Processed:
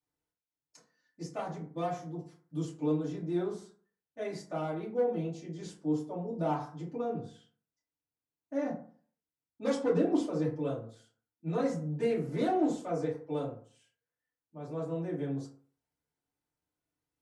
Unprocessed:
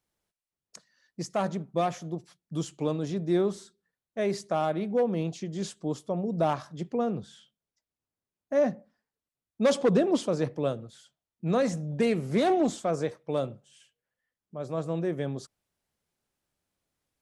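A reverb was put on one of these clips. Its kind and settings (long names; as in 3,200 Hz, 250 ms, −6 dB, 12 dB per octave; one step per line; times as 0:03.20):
feedback delay network reverb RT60 0.47 s, low-frequency decay 1×, high-frequency decay 0.45×, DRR −8.5 dB
level −16 dB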